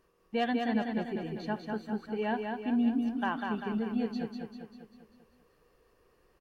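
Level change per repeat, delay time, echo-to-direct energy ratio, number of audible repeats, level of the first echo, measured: -5.5 dB, 0.197 s, -3.0 dB, 6, -4.5 dB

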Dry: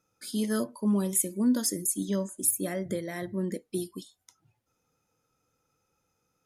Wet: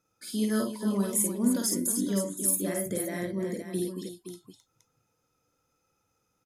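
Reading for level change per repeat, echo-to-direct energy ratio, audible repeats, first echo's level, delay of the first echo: no steady repeat, -1.0 dB, 3, -3.0 dB, 51 ms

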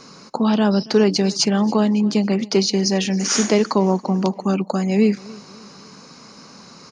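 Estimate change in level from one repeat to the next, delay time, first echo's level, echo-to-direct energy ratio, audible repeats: -6.5 dB, 0.279 s, -22.0 dB, -21.0 dB, 2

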